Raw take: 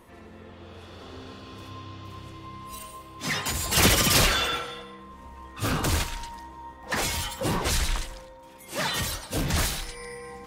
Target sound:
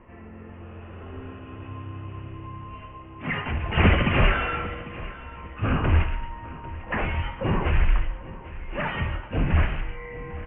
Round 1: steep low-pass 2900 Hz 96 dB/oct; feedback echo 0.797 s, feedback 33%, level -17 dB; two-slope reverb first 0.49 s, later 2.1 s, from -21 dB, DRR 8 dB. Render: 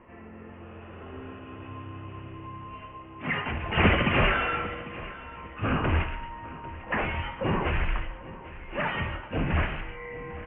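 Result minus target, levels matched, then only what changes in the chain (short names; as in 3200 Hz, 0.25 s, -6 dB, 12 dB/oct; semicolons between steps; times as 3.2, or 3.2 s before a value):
125 Hz band -3.0 dB
add after steep low-pass: low shelf 110 Hz +9.5 dB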